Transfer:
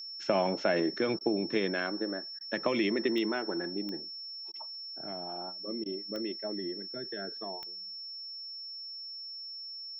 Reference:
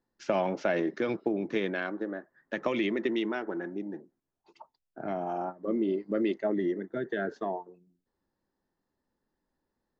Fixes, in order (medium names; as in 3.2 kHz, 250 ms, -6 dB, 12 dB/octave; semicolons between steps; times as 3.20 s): de-click; band-stop 5.4 kHz, Q 30; interpolate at 1.19/2.39/4.52/5.84 s, 17 ms; trim 0 dB, from 4.91 s +8.5 dB